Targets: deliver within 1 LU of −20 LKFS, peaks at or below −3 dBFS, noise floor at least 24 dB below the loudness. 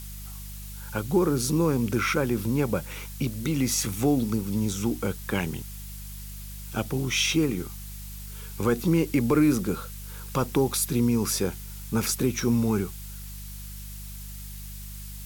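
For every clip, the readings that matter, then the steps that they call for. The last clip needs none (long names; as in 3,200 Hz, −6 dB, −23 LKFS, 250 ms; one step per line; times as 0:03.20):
mains hum 50 Hz; hum harmonics up to 200 Hz; level of the hum −37 dBFS; background noise floor −39 dBFS; target noise floor −50 dBFS; integrated loudness −26.0 LKFS; sample peak −11.5 dBFS; target loudness −20.0 LKFS
→ hum removal 50 Hz, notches 4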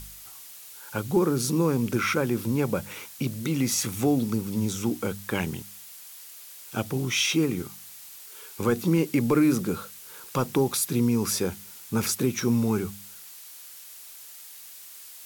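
mains hum none found; background noise floor −45 dBFS; target noise floor −50 dBFS
→ broadband denoise 6 dB, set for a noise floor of −45 dBFS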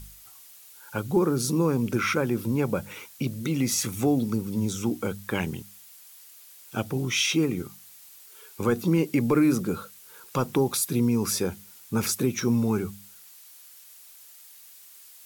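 background noise floor −50 dBFS; integrated loudness −26.0 LKFS; sample peak −11.5 dBFS; target loudness −20.0 LKFS
→ level +6 dB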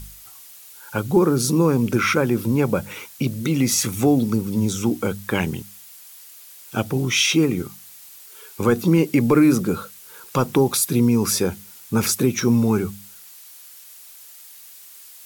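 integrated loudness −20.0 LKFS; sample peak −5.5 dBFS; background noise floor −44 dBFS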